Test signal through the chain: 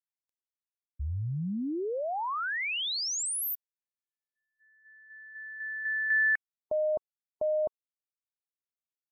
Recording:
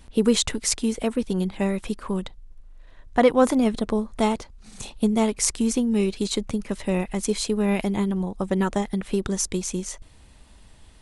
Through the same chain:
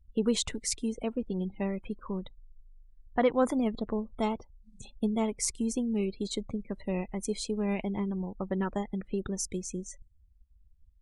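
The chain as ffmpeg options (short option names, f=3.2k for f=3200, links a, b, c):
-af "afftdn=nr=36:nf=-36,volume=-8dB"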